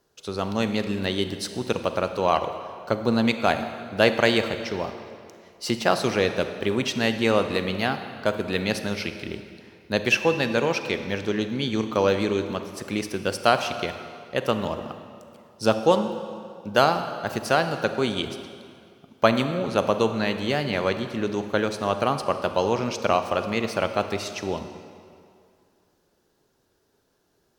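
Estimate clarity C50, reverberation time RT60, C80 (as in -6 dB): 9.0 dB, 2.3 s, 10.0 dB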